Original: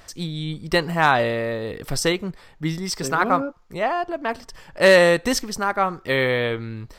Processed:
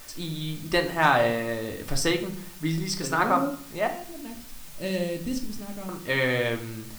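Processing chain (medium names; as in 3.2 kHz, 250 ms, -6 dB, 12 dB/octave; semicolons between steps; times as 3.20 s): 3.87–5.89 s: FFT filter 200 Hz 0 dB, 1.4 kHz -27 dB, 2.7 kHz -12 dB; added noise white -44 dBFS; reverberation RT60 0.55 s, pre-delay 3 ms, DRR 3.5 dB; trim -4.5 dB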